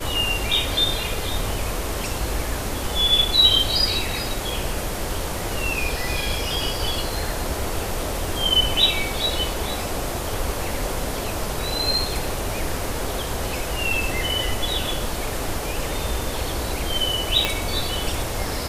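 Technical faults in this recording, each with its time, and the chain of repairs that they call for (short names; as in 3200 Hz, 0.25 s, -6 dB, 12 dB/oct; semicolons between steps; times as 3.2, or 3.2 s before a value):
17.45 pop -5 dBFS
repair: de-click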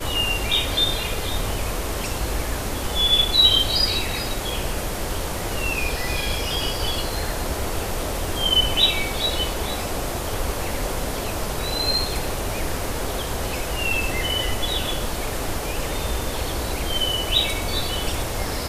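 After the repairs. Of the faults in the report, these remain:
17.45 pop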